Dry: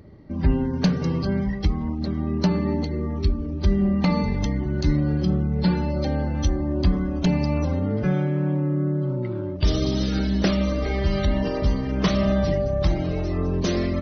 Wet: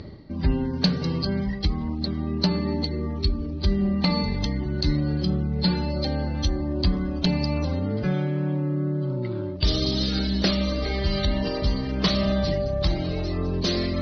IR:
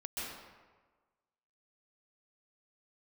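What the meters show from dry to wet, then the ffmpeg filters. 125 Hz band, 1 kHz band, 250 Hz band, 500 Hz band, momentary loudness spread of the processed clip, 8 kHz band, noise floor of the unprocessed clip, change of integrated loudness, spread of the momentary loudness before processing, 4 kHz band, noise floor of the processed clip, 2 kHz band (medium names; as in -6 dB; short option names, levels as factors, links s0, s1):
-2.5 dB, -2.0 dB, -2.5 dB, -2.0 dB, 4 LU, no reading, -29 dBFS, -1.5 dB, 4 LU, +7.0 dB, -30 dBFS, -0.5 dB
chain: -af "areverse,acompressor=mode=upward:threshold=0.0891:ratio=2.5,areverse,lowpass=f=4400:t=q:w=4.1,volume=0.75"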